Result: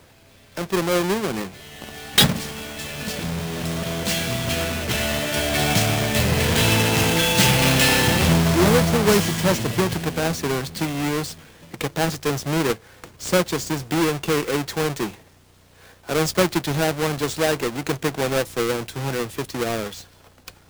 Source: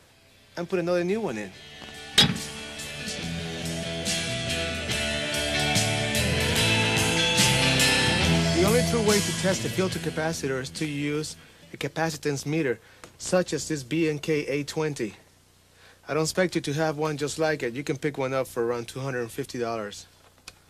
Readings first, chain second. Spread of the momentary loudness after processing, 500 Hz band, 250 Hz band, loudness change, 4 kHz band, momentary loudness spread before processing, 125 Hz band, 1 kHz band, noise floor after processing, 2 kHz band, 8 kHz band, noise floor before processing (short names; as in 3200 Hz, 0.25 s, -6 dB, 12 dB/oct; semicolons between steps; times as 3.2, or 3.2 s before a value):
13 LU, +4.0 dB, +5.0 dB, +4.0 dB, +2.5 dB, 14 LU, +6.0 dB, +6.5 dB, -52 dBFS, +3.5 dB, +3.5 dB, -57 dBFS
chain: half-waves squared off